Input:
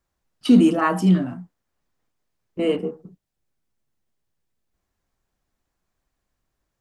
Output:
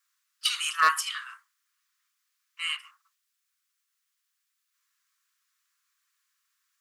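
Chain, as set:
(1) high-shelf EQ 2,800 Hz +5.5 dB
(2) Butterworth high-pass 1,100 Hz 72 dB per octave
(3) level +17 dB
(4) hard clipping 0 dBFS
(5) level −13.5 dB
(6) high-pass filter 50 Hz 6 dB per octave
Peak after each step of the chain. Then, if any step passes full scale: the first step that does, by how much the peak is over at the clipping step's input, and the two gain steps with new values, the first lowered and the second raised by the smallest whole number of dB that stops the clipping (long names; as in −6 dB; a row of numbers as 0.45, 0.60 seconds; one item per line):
−4.5, −10.0, +7.0, 0.0, −13.5, −13.0 dBFS
step 3, 7.0 dB
step 3 +10 dB, step 5 −6.5 dB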